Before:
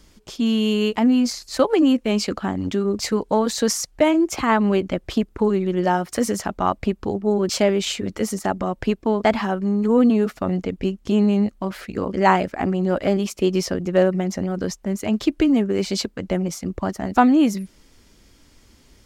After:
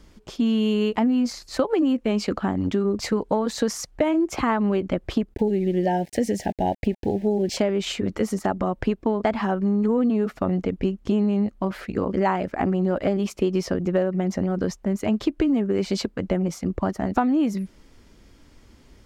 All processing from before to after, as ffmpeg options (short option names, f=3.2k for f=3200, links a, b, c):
-filter_complex "[0:a]asettb=1/sr,asplit=3[a][b][c];[a]atrim=end=5.344[d];[b]atrim=start=5.34:end=7.57,asetpts=PTS-STARTPTS,afade=t=in:d=0.004:c=qsin,afade=t=out:st=2.226:d=0.004:c=qsin,aeval=exprs='val(0)*gte(abs(val(0)),0.0112)':c=same,asuperstop=centerf=1200:order=8:qfactor=1.5[e];[c]atrim=start=7.566[f];[d][e]acrossfade=d=0.004:c1=hsin:c2=qsin[g];[g][f]acrossfade=d=0.004:c1=qsin:c2=hsin,highshelf=f=3.1k:g=-9.5,acompressor=threshold=-20dB:ratio=6,volume=2dB"